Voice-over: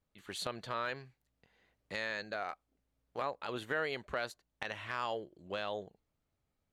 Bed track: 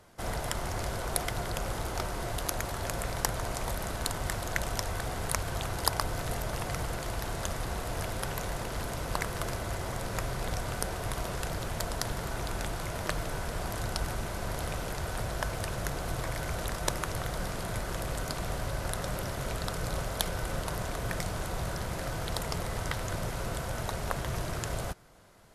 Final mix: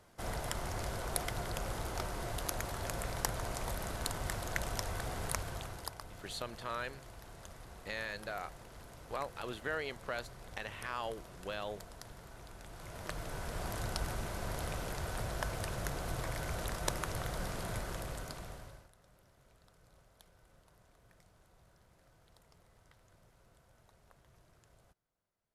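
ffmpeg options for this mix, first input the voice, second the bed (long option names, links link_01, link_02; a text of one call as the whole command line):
ffmpeg -i stem1.wav -i stem2.wav -filter_complex "[0:a]adelay=5950,volume=-2.5dB[link_01];[1:a]volume=8dB,afade=type=out:start_time=5.27:duration=0.68:silence=0.237137,afade=type=in:start_time=12.64:duration=1.04:silence=0.223872,afade=type=out:start_time=17.72:duration=1.17:silence=0.0446684[link_02];[link_01][link_02]amix=inputs=2:normalize=0" out.wav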